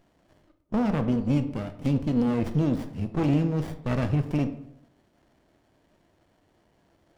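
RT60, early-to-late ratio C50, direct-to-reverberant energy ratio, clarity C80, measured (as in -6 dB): 0.75 s, 12.5 dB, 8.5 dB, 15.5 dB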